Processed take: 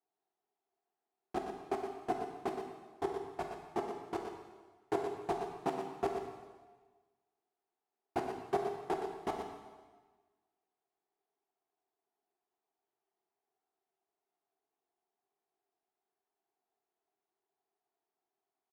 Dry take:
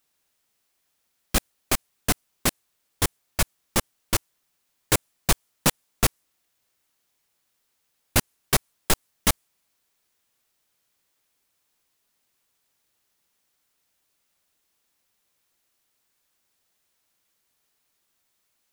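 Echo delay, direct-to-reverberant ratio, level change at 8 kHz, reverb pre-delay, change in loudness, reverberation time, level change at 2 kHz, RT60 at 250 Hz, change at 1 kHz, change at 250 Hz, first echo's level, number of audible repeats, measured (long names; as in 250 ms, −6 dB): 119 ms, 1.0 dB, −33.0 dB, 5 ms, −13.5 dB, 1.4 s, −19.0 dB, 1.4 s, −5.0 dB, −9.5 dB, −8.0 dB, 1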